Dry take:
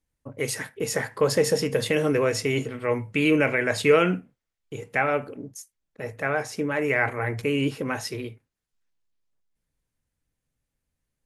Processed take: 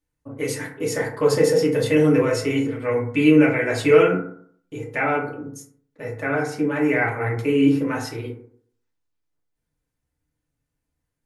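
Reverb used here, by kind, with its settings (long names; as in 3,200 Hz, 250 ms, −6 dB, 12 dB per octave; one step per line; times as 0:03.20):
feedback delay network reverb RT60 0.59 s, low-frequency decay 1×, high-frequency decay 0.35×, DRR −3.5 dB
level −3.5 dB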